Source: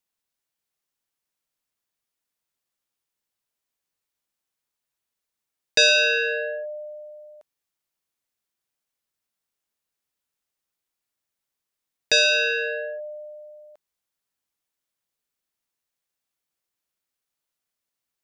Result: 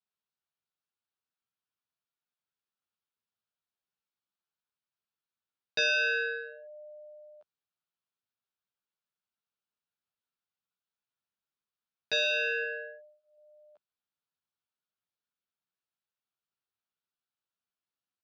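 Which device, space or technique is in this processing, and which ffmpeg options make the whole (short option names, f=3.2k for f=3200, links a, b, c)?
barber-pole flanger into a guitar amplifier: -filter_complex "[0:a]asplit=2[a][b];[b]adelay=11.8,afreqshift=0.44[c];[a][c]amix=inputs=2:normalize=1,asoftclip=type=tanh:threshold=-13.5dB,highpass=86,equalizer=f=99:t=q:w=4:g=5,equalizer=f=190:t=q:w=4:g=3,equalizer=f=300:t=q:w=4:g=-5,equalizer=f=540:t=q:w=4:g=-4,equalizer=f=1.4k:t=q:w=4:g=5,equalizer=f=2k:t=q:w=4:g=-7,lowpass=f=4.5k:w=0.5412,lowpass=f=4.5k:w=1.3066,asettb=1/sr,asplit=3[d][e][f];[d]atrim=end=12.644[g];[e]atrim=start=12.64:end=13.38,asetpts=PTS-STARTPTS,afade=t=in:d=0.004:c=qsin,afade=t=out:st=0.736:d=0.004:c=qsin,lowshelf=f=440:g=-5.5[h];[f]atrim=start=13.376[i];[g][h]acrossfade=d=0.004:c1=hsin:c2=qsin[j];[j][i]acrossfade=d=0.004:c1=qsin:c2=hsin,volume=-4.5dB"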